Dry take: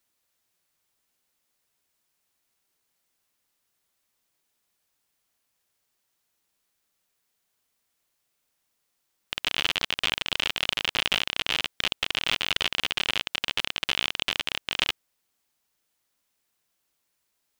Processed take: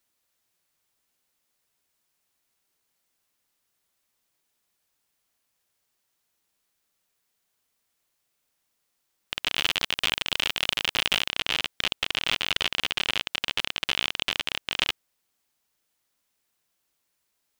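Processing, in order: 9.55–11.28 s: treble shelf 7.8 kHz +6.5 dB

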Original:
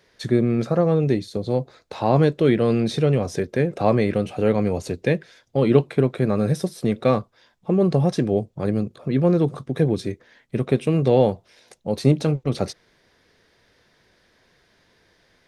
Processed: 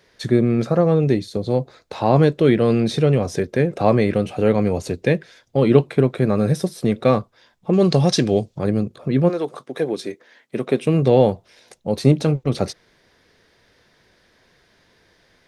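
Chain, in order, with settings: 7.73–8.59 s: peaking EQ 4.9 kHz +13 dB 2.2 oct; 9.28–10.85 s: high-pass 530 Hz -> 210 Hz 12 dB/octave; trim +2.5 dB

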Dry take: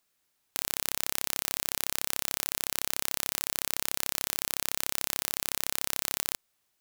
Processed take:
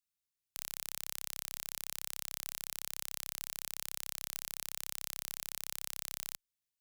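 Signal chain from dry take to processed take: amplifier tone stack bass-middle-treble 6-0-2; waveshaping leveller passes 2; trim +3.5 dB

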